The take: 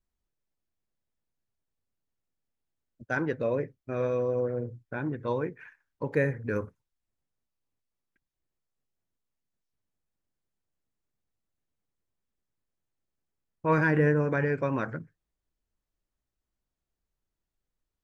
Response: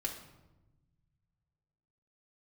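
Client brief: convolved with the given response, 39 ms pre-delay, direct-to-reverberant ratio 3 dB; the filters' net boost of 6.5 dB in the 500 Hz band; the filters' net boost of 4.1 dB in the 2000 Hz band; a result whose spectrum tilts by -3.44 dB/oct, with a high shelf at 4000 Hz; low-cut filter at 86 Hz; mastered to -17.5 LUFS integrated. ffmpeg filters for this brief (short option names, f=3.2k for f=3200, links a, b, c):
-filter_complex "[0:a]highpass=86,equalizer=f=500:t=o:g=7,equalizer=f=2k:t=o:g=6.5,highshelf=f=4k:g=-8,asplit=2[a][b];[1:a]atrim=start_sample=2205,adelay=39[c];[b][c]afir=irnorm=-1:irlink=0,volume=-4dB[d];[a][d]amix=inputs=2:normalize=0,volume=5.5dB"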